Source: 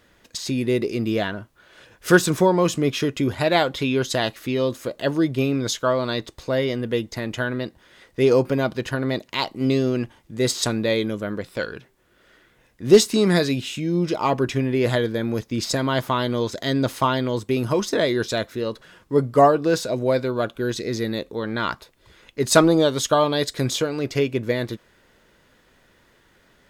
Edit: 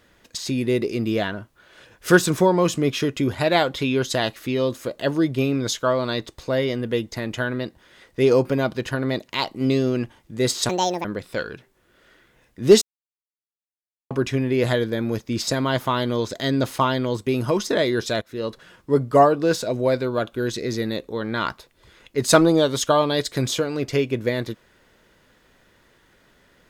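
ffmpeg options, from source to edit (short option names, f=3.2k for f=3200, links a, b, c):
-filter_complex "[0:a]asplit=6[a][b][c][d][e][f];[a]atrim=end=10.694[g];[b]atrim=start=10.69:end=11.27,asetpts=PTS-STARTPTS,asetrate=71883,aresample=44100,atrim=end_sample=15692,asetpts=PTS-STARTPTS[h];[c]atrim=start=11.266:end=13.04,asetpts=PTS-STARTPTS,afade=t=out:st=1.77:d=0.004:c=hsin[i];[d]atrim=start=13.04:end=14.33,asetpts=PTS-STARTPTS,volume=0[j];[e]atrim=start=14.33:end=18.44,asetpts=PTS-STARTPTS,afade=t=in:d=0.004:c=hsin,afade=t=out:st=4.106:d=0.004:c=hsin:silence=0.16788[k];[f]atrim=start=18.44,asetpts=PTS-STARTPTS,afade=t=in:d=0.25:silence=0.16788[l];[g][h]acrossfade=d=0.004:c1=hsin:c2=hsin[m];[i][j][k][l]concat=n=4:v=0:a=1[n];[m][n]acrossfade=d=0.004:c1=hsin:c2=hsin"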